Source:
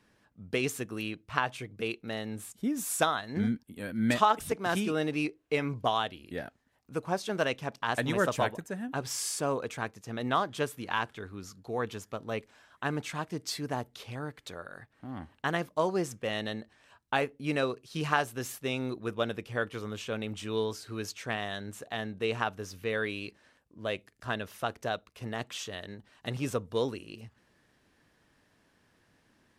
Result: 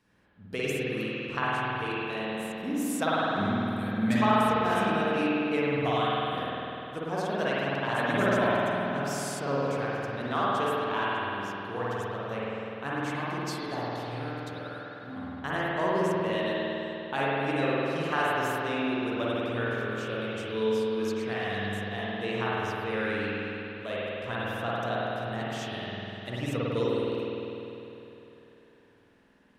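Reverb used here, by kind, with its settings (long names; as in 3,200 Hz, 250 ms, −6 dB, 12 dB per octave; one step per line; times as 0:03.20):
spring reverb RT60 3.3 s, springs 50 ms, chirp 60 ms, DRR −8 dB
level −5 dB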